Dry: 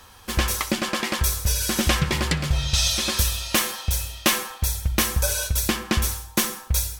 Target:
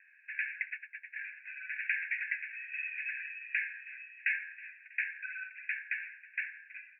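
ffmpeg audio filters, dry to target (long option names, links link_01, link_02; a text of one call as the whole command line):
ffmpeg -i in.wav -filter_complex "[0:a]asettb=1/sr,asplit=3[link_01][link_02][link_03];[link_01]atrim=end=0.704[link_04];[link_02]atrim=start=0.7:end=1.16,asetpts=PTS-STARTPTS,afade=type=in:duration=0.004:curve=qsin,afade=type=out:start_time=0.456:duration=0.004:curve=qsin,agate=range=-29dB:threshold=-22dB:ratio=16:detection=peak[link_05];[link_03]atrim=start=1.156[link_06];[link_04][link_05]acrossfade=duration=0.004:curve1=hsin:curve2=qsin[link_07];[link_07][link_06]acrossfade=duration=0.004:curve1=qsin:curve2=hsin,asuperpass=centerf=2000:order=20:qfactor=1.8,aecho=1:1:322|644|966|1288:0.1|0.055|0.0303|0.0166,volume=-3.5dB" out.wav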